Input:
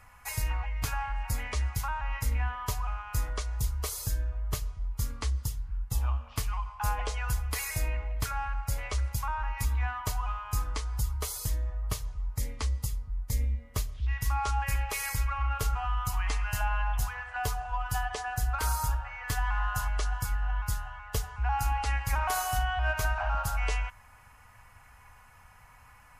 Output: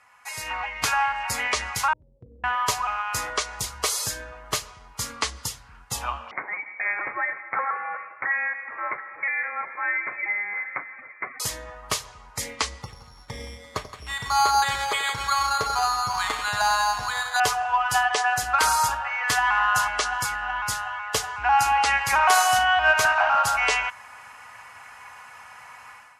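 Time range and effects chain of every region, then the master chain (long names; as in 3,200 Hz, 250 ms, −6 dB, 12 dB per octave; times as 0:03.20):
0:01.93–0:02.44: Chebyshev low-pass with heavy ripple 520 Hz, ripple 6 dB + downward compressor 3 to 1, threshold −39 dBFS
0:06.31–0:11.40: Butterworth high-pass 1,200 Hz + voice inversion scrambler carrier 3,300 Hz
0:12.82–0:17.40: dynamic equaliser 3,000 Hz, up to −5 dB, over −51 dBFS, Q 0.87 + echo with a time of its own for lows and highs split 820 Hz, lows 87 ms, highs 170 ms, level −11 dB + bad sample-rate conversion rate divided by 8×, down filtered, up hold
0:23.05–0:23.45: high-pass filter 160 Hz 6 dB per octave + highs frequency-modulated by the lows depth 0.1 ms
whole clip: meter weighting curve A; automatic gain control gain up to 13 dB; low-pass filter 11,000 Hz 12 dB per octave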